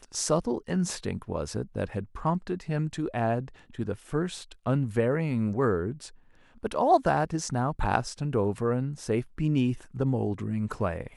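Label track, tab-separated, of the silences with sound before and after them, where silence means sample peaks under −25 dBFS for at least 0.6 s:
5.910000	6.640000	silence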